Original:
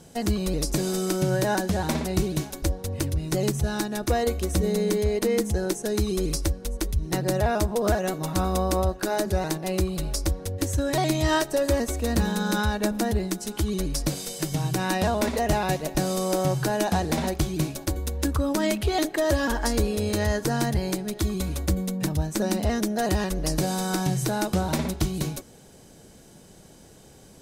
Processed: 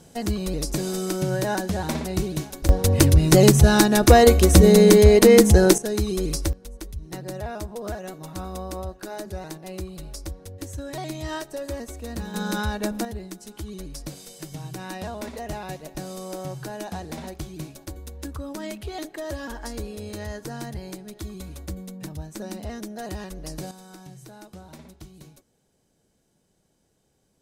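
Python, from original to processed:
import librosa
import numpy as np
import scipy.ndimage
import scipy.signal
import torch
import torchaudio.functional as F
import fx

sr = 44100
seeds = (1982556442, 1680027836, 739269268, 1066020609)

y = fx.gain(x, sr, db=fx.steps((0.0, -1.0), (2.69, 11.5), (5.78, 0.5), (6.53, -9.0), (12.34, -2.0), (13.05, -9.5), (23.71, -19.0)))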